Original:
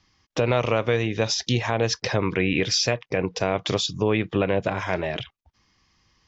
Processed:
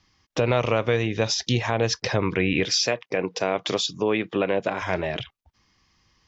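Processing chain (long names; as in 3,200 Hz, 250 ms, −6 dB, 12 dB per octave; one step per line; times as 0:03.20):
0:02.65–0:04.82: high-pass filter 210 Hz 12 dB per octave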